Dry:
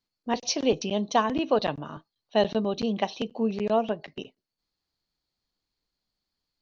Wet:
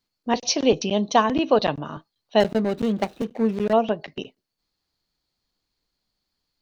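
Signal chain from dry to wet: 2.40–3.73 s: median filter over 41 samples; trim +5 dB

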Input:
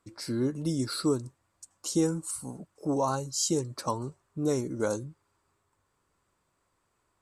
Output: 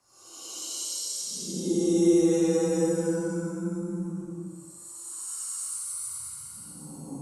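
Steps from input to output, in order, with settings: Paulstretch 11×, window 0.10 s, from 1.80 s; frequency shift +14 Hz

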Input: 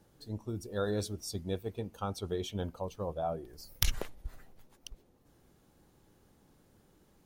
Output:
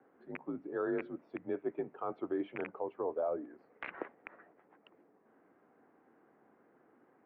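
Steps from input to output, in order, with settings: rattle on loud lows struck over -34 dBFS, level -20 dBFS; mistuned SSB -66 Hz 340–2100 Hz; peak limiter -30 dBFS, peak gain reduction 7.5 dB; trim +4 dB

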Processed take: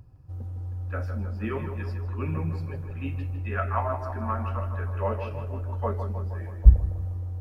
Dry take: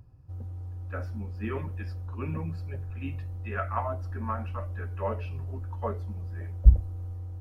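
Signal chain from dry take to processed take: tape echo 158 ms, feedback 69%, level -7 dB, low-pass 2.1 kHz; trim +2.5 dB

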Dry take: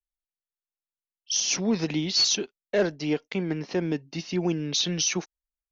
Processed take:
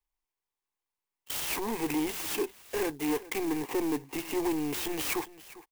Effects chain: peaking EQ 1.1 kHz +8 dB 1.2 oct; band-stop 1.8 kHz, Q 14; saturation -30.5 dBFS, distortion -6 dB; static phaser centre 910 Hz, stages 8; on a send: delay 401 ms -18 dB; on the sum: sampling jitter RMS 0.059 ms; trim +6.5 dB

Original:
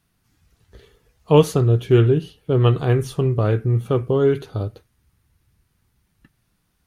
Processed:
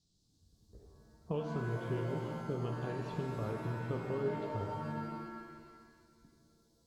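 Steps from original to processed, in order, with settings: level-controlled noise filter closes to 470 Hz, open at -15 dBFS; compression, threshold -27 dBFS, peak gain reduction 18.5 dB; band noise 4–9.9 kHz -62 dBFS; distance through air 160 m; pitch-shifted reverb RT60 1.8 s, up +7 st, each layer -2 dB, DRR 4 dB; trim -9 dB

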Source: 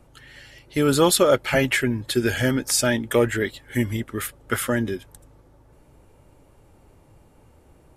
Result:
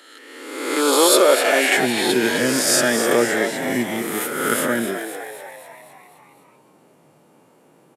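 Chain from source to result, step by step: reverse spectral sustain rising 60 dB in 1.22 s; steep high-pass 280 Hz 36 dB/octave, from 1.77 s 150 Hz; frequency-shifting echo 256 ms, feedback 58%, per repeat +98 Hz, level -9 dB

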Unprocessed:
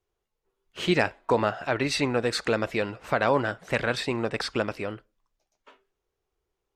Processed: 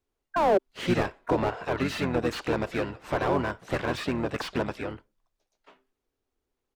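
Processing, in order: painted sound fall, 0.36–0.58 s, 540–1100 Hz -15 dBFS; harmony voices -7 st -3 dB, +7 st -15 dB; slew-rate limiter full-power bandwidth 100 Hz; trim -3 dB

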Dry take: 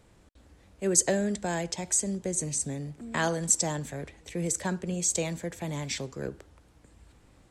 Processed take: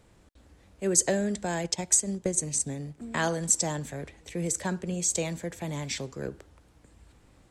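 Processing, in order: 1.64–3.14 s: transient shaper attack +6 dB, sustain -5 dB

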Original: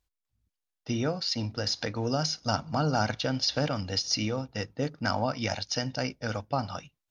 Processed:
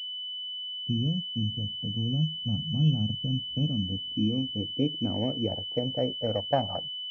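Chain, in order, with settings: low-pass sweep 180 Hz -> 690 Hz, 3.27–6.75 s; spectral noise reduction 17 dB; class-D stage that switches slowly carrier 3 kHz

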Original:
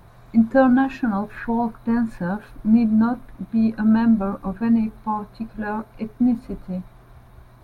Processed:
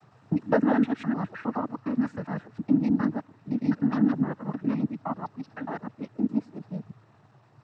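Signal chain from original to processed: time reversed locally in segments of 103 ms; noise-vocoded speech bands 12; trim -6.5 dB

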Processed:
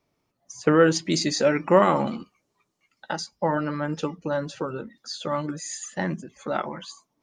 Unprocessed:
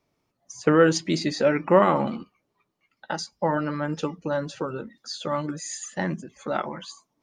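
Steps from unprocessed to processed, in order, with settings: 1.11–3.13 s: peaking EQ 6.9 kHz +10 dB 1.1 oct

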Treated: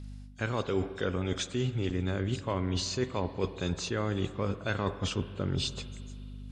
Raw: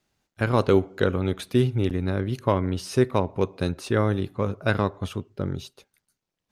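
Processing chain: knee-point frequency compression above 3.1 kHz 1.5:1; treble shelf 2.7 kHz +11 dB; in parallel at -1 dB: peak limiter -17 dBFS, peak gain reduction 11.5 dB; on the sum: hum 50 Hz, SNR 21 dB; reverse; compression 6:1, threshold -28 dBFS, peak gain reduction 16 dB; reverse; spring tank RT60 2.7 s, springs 44/51 ms, chirp 40 ms, DRR 13 dB

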